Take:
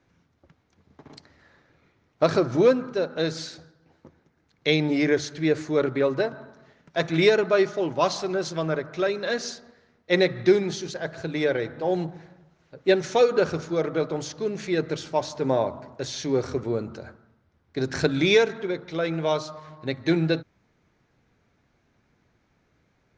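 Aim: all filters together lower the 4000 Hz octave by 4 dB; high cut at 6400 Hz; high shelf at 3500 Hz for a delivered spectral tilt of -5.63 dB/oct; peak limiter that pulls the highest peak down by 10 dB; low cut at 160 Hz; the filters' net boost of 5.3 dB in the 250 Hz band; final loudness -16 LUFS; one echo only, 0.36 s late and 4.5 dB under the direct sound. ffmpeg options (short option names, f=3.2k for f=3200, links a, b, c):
-af "highpass=160,lowpass=6.4k,equalizer=f=250:t=o:g=8.5,highshelf=f=3.5k:g=5.5,equalizer=f=4k:t=o:g=-7.5,alimiter=limit=-14.5dB:level=0:latency=1,aecho=1:1:360:0.596,volume=8.5dB"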